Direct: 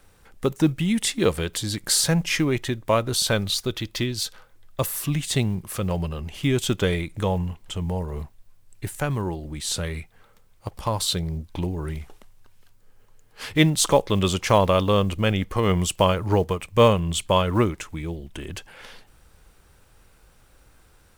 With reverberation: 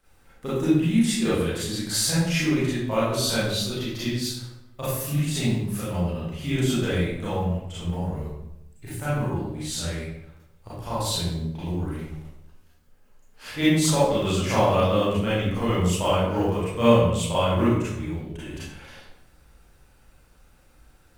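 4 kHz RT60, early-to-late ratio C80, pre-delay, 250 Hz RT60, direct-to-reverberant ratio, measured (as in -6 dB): 0.60 s, 2.5 dB, 30 ms, 1.1 s, -11.5 dB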